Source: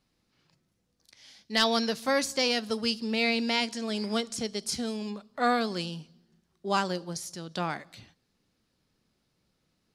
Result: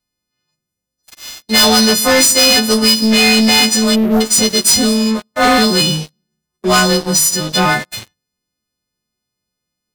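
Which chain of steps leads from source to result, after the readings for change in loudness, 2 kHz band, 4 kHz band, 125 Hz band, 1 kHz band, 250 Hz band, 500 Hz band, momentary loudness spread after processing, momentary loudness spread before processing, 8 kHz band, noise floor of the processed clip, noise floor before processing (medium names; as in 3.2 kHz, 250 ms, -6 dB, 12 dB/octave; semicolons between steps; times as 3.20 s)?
+18.5 dB, +16.5 dB, +19.5 dB, +19.0 dB, +14.0 dB, +18.0 dB, +14.5 dB, 8 LU, 12 LU, +26.0 dB, -79 dBFS, -76 dBFS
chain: partials quantised in pitch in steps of 3 st; bass shelf 290 Hz +6 dB; hum notches 50/100/150/200/250/300/350/400 Hz; spectral selection erased 3.95–4.21 s, 810–11000 Hz; waveshaping leveller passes 5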